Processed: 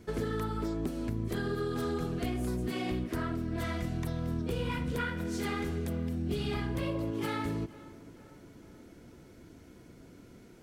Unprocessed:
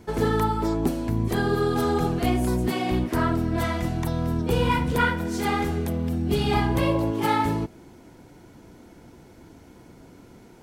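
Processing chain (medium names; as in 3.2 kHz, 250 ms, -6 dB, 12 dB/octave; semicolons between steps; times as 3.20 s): peaking EQ 860 Hz -10 dB 0.45 oct; compression, threshold -25 dBFS, peak gain reduction 7.5 dB; tape echo 461 ms, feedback 61%, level -18.5 dB, low-pass 2.9 kHz; loudspeaker Doppler distortion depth 0.1 ms; trim -4.5 dB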